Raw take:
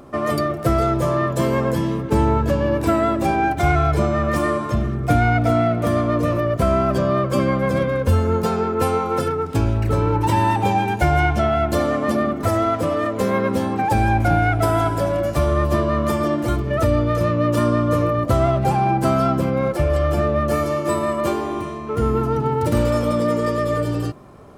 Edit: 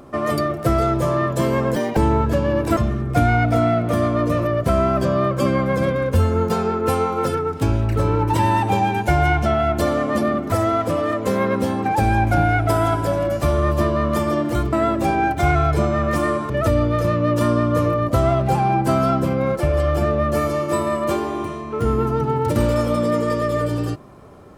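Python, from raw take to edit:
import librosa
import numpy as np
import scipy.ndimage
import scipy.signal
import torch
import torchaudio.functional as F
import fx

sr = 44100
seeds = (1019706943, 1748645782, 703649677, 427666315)

y = fx.edit(x, sr, fx.speed_span(start_s=1.76, length_s=0.37, speed=1.79),
    fx.move(start_s=2.93, length_s=1.77, to_s=16.66), tone=tone)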